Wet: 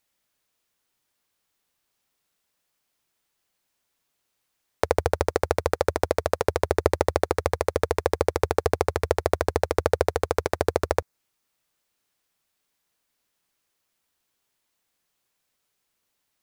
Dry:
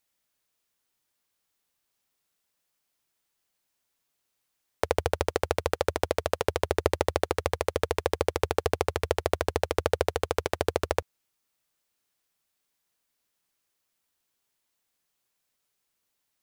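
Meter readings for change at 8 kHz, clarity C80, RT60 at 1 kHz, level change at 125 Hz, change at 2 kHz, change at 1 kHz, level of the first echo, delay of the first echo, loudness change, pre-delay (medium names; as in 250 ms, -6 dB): +1.5 dB, no reverb, no reverb, +4.0 dB, +2.0 dB, +3.5 dB, no echo, no echo, +3.5 dB, no reverb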